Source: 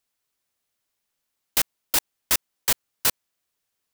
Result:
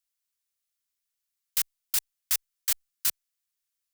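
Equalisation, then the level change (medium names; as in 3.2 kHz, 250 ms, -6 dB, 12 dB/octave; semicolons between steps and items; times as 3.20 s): amplifier tone stack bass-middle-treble 10-0-10; peaking EQ 840 Hz -7.5 dB 0.3 oct; peaking EQ 2.9 kHz -2.5 dB 1.6 oct; -3.5 dB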